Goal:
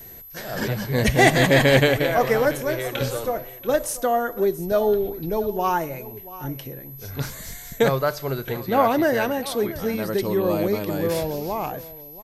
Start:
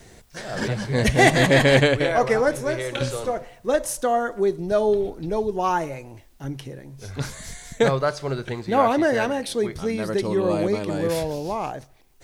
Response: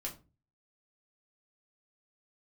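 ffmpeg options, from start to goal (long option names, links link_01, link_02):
-af "aecho=1:1:683:0.141,aeval=exprs='val(0)+0.01*sin(2*PI*12000*n/s)':channel_layout=same"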